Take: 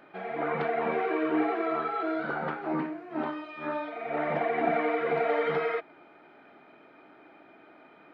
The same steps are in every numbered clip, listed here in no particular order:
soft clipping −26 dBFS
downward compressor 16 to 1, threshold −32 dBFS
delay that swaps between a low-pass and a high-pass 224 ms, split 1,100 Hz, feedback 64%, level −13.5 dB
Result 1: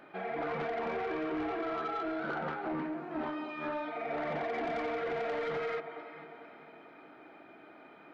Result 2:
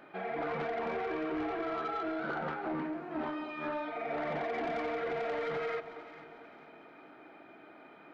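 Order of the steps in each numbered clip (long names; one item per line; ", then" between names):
delay that swaps between a low-pass and a high-pass, then soft clipping, then downward compressor
soft clipping, then delay that swaps between a low-pass and a high-pass, then downward compressor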